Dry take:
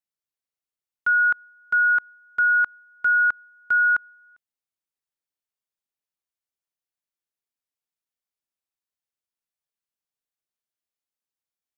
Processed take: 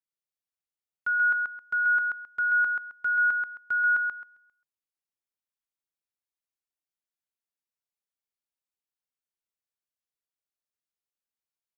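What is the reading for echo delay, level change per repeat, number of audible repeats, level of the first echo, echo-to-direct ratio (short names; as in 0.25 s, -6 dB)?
0.133 s, -12.5 dB, 2, -3.5 dB, -3.5 dB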